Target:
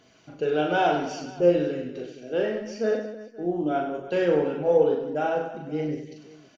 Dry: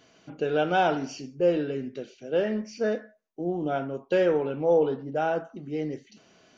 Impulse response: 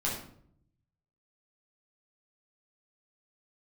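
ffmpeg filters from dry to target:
-af "aphaser=in_gain=1:out_gain=1:delay=3.5:decay=0.29:speed=0.69:type=triangular,aecho=1:1:40|100|190|325|527.5:0.631|0.398|0.251|0.158|0.1,volume=0.841"

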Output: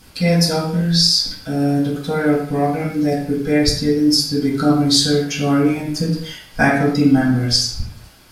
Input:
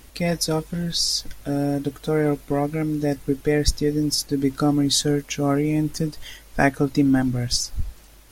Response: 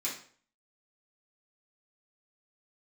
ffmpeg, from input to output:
-filter_complex "[1:a]atrim=start_sample=2205,afade=t=out:st=0.24:d=0.01,atrim=end_sample=11025,asetrate=29106,aresample=44100[s0];[0:a][s0]afir=irnorm=-1:irlink=0,volume=0.891"

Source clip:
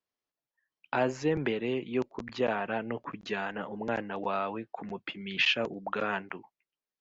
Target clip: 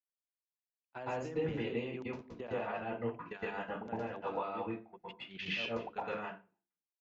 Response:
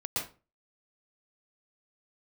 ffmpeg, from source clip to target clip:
-filter_complex "[0:a]bandreject=f=50:t=h:w=6,bandreject=f=100:t=h:w=6,bandreject=f=150:t=h:w=6,bandreject=f=200:t=h:w=6,bandreject=f=250:t=h:w=6,bandreject=f=300:t=h:w=6,bandreject=f=350:t=h:w=6,bandreject=f=400:t=h:w=6,bandreject=f=450:t=h:w=6,aecho=1:1:280:0.0668,alimiter=level_in=1.33:limit=0.0631:level=0:latency=1:release=26,volume=0.75,agate=range=0.00355:threshold=0.0178:ratio=16:detection=peak,acompressor=threshold=0.00398:ratio=5[s0];[1:a]atrim=start_sample=2205[s1];[s0][s1]afir=irnorm=-1:irlink=0,volume=2.24"

